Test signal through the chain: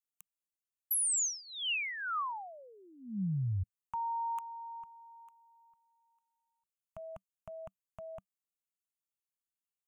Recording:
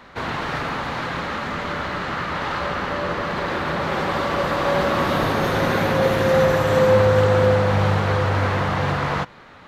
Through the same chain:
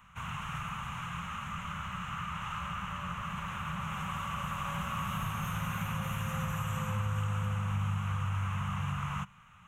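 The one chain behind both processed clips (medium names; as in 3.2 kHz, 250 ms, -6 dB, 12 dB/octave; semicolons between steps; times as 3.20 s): FFT filter 110 Hz 0 dB, 190 Hz -1 dB, 290 Hz -27 dB, 420 Hz -27 dB, 660 Hz -19 dB, 1.2 kHz -1 dB, 1.8 kHz -12 dB, 2.8 kHz +1 dB, 4.6 kHz -25 dB, 6.5 kHz +3 dB; compression 2:1, threshold -25 dBFS; trim -7 dB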